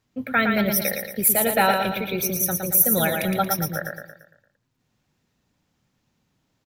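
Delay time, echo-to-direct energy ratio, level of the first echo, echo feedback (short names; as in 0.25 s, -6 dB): 0.114 s, -4.0 dB, -5.0 dB, 46%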